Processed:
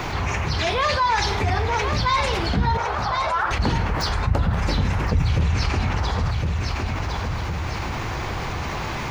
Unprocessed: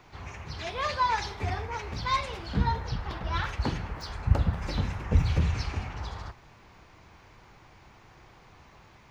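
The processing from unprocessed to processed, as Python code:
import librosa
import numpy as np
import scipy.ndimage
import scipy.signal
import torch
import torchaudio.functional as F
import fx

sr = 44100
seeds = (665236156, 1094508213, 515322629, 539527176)

y = fx.cheby1_bandpass(x, sr, low_hz=640.0, high_hz=1400.0, order=2, at=(2.77, 3.51))
y = fx.echo_feedback(y, sr, ms=1059, feedback_pct=24, wet_db=-12.0)
y = fx.env_flatten(y, sr, amount_pct=70)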